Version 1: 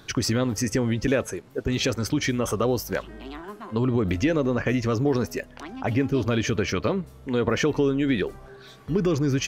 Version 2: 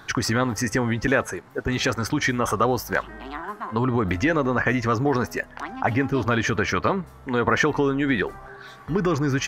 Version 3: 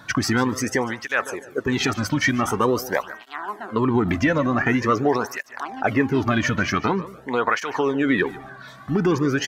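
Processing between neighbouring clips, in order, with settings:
high-order bell 1.2 kHz +9 dB
feedback delay 146 ms, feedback 29%, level -17 dB; cancelling through-zero flanger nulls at 0.46 Hz, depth 2.6 ms; trim +4 dB

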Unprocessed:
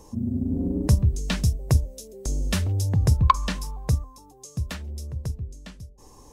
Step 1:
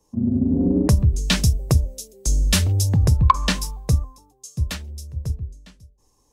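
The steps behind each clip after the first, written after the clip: in parallel at -2 dB: peak limiter -16 dBFS, peak gain reduction 11 dB; on the sum: compression 6:1, threshold -16 dBFS, peak gain reduction 7.5 dB; three bands expanded up and down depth 100%; trim +2.5 dB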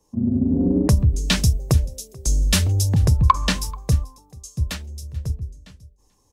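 delay 436 ms -23.5 dB

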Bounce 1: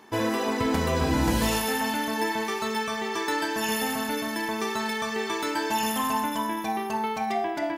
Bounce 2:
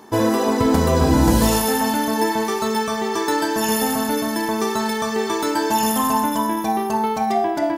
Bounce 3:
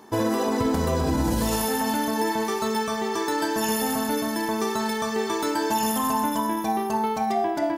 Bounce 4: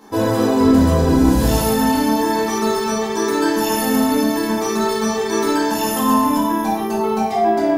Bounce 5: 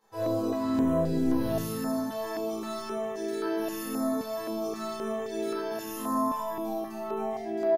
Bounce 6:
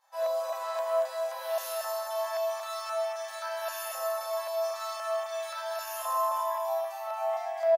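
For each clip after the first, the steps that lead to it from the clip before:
peaking EQ 2.4 kHz -9.5 dB 1.4 oct; trim +9 dB
peak limiter -10.5 dBFS, peak gain reduction 7 dB; trim -4 dB
simulated room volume 200 m³, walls mixed, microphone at 2.1 m; trim -1 dB
chord resonator A2 minor, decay 0.45 s; early reflections 29 ms -6.5 dB, 49 ms -6 dB; step-sequenced notch 3.8 Hz 270–7500 Hz; trim -3 dB
in parallel at -12 dB: crossover distortion -46 dBFS; on the sum: brick-wall FIR high-pass 530 Hz; delay 232 ms -5.5 dB

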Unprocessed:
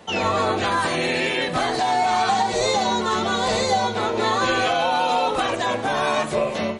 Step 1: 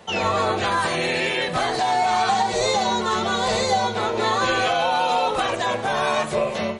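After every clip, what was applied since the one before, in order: peaking EQ 280 Hz -11.5 dB 0.24 oct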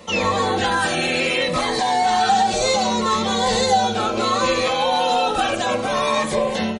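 comb 3.8 ms, depth 45%; in parallel at -1 dB: peak limiter -17.5 dBFS, peak gain reduction 9.5 dB; on the sum: Shepard-style phaser falling 0.67 Hz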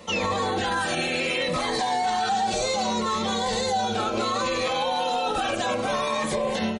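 peak limiter -14.5 dBFS, peak gain reduction 8 dB; trim -2.5 dB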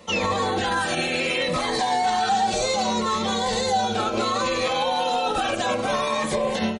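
upward expansion 1.5:1, over -34 dBFS; trim +3.5 dB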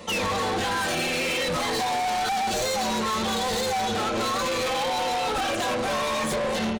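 saturation -30 dBFS, distortion -7 dB; trim +6 dB

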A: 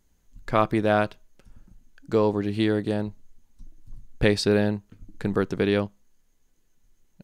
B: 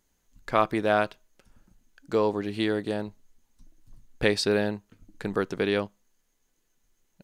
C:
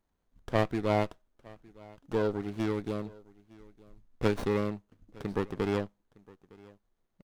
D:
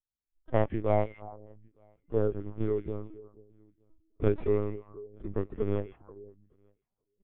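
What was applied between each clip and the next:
bass shelf 240 Hz -10 dB
delay 911 ms -23.5 dB; sliding maximum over 17 samples; trim -5 dB
repeats whose band climbs or falls 160 ms, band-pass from 2.5 kHz, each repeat -1.4 oct, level -5.5 dB; LPC vocoder at 8 kHz pitch kept; spectral contrast expander 1.5:1

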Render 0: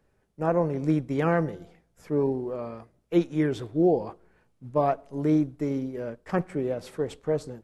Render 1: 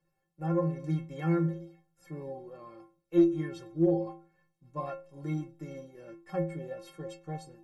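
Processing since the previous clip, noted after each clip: inharmonic resonator 160 Hz, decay 0.51 s, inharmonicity 0.03; Chebyshev shaper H 4 -30 dB, 6 -36 dB, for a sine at -19.5 dBFS; trim +6.5 dB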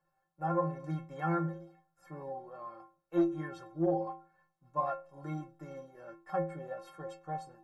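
high-order bell 1 kHz +12 dB; trim -6 dB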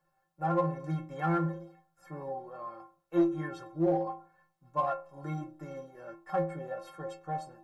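de-hum 103.2 Hz, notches 13; in parallel at -12 dB: hard clipper -31 dBFS, distortion -8 dB; on the sum: trim +1.5 dB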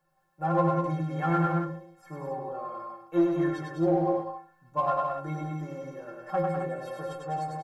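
loudspeakers at several distances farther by 34 m -3 dB, 69 m -5 dB, 91 m -8 dB; trim +2 dB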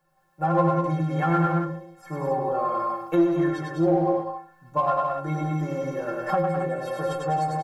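recorder AGC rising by 8.3 dB/s; trim +3.5 dB

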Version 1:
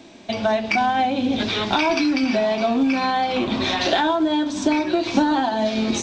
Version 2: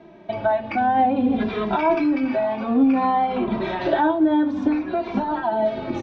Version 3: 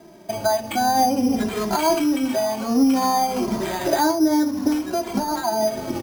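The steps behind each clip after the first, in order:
low-pass 1.5 kHz 12 dB/octave; endless flanger 2.6 ms -0.56 Hz; trim +3 dB
careless resampling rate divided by 8×, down none, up hold

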